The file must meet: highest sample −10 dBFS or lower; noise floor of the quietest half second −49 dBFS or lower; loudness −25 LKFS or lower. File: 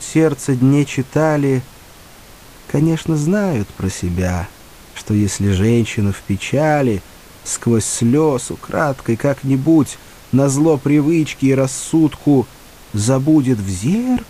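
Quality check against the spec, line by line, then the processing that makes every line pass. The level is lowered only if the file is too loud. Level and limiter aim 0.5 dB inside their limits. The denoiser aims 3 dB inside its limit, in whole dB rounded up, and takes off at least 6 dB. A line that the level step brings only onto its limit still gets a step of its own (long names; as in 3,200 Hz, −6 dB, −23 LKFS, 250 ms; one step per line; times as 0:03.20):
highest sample −2.5 dBFS: out of spec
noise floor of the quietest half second −41 dBFS: out of spec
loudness −16.5 LKFS: out of spec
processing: level −9 dB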